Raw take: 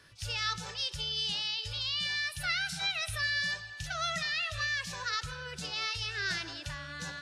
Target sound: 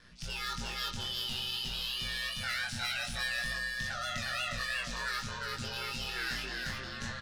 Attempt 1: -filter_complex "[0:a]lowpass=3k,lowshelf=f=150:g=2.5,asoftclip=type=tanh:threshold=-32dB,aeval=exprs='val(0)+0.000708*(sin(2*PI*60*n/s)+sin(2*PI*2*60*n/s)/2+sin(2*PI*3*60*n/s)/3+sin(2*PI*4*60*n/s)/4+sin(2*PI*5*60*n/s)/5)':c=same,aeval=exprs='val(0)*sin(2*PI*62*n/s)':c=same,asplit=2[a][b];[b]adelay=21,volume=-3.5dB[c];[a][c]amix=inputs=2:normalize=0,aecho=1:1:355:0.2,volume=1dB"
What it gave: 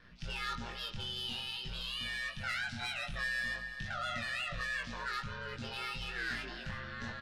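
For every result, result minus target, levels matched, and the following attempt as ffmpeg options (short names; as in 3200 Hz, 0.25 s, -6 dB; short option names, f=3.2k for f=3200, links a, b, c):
echo-to-direct -11.5 dB; 8000 Hz band -7.0 dB
-filter_complex "[0:a]lowpass=3k,lowshelf=f=150:g=2.5,asoftclip=type=tanh:threshold=-32dB,aeval=exprs='val(0)+0.000708*(sin(2*PI*60*n/s)+sin(2*PI*2*60*n/s)/2+sin(2*PI*3*60*n/s)/3+sin(2*PI*4*60*n/s)/4+sin(2*PI*5*60*n/s)/5)':c=same,aeval=exprs='val(0)*sin(2*PI*62*n/s)':c=same,asplit=2[a][b];[b]adelay=21,volume=-3.5dB[c];[a][c]amix=inputs=2:normalize=0,aecho=1:1:355:0.75,volume=1dB"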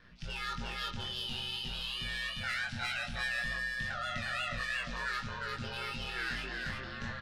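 8000 Hz band -7.0 dB
-filter_complex "[0:a]lowpass=8.3k,lowshelf=f=150:g=2.5,asoftclip=type=tanh:threshold=-32dB,aeval=exprs='val(0)+0.000708*(sin(2*PI*60*n/s)+sin(2*PI*2*60*n/s)/2+sin(2*PI*3*60*n/s)/3+sin(2*PI*4*60*n/s)/4+sin(2*PI*5*60*n/s)/5)':c=same,aeval=exprs='val(0)*sin(2*PI*62*n/s)':c=same,asplit=2[a][b];[b]adelay=21,volume=-3.5dB[c];[a][c]amix=inputs=2:normalize=0,aecho=1:1:355:0.75,volume=1dB"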